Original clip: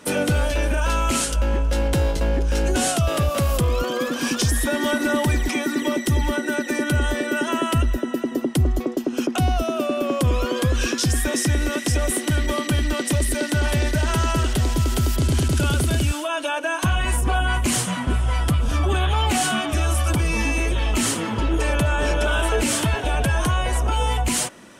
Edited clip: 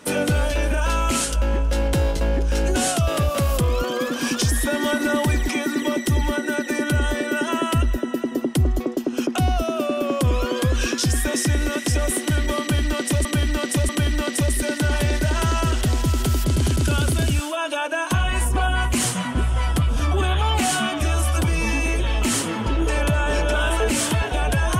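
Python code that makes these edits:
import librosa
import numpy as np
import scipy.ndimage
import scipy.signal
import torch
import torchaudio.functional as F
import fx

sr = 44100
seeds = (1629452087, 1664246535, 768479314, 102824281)

y = fx.edit(x, sr, fx.repeat(start_s=12.61, length_s=0.64, count=3), tone=tone)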